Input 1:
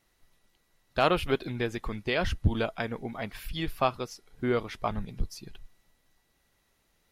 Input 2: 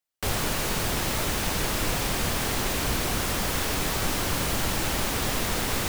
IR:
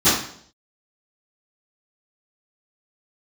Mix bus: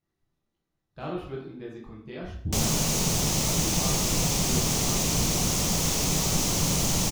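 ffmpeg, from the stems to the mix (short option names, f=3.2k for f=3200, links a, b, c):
-filter_complex "[0:a]tiltshelf=f=1.1k:g=4,volume=-19dB,asplit=2[a][b];[b]volume=-16.5dB[c];[1:a]equalizer=f=160:t=o:w=0.67:g=10,equalizer=f=1.6k:t=o:w=0.67:g=-10,equalizer=f=6.3k:t=o:w=0.67:g=11,adelay=2300,volume=-1dB[d];[2:a]atrim=start_sample=2205[e];[c][e]afir=irnorm=-1:irlink=0[f];[a][d][f]amix=inputs=3:normalize=0"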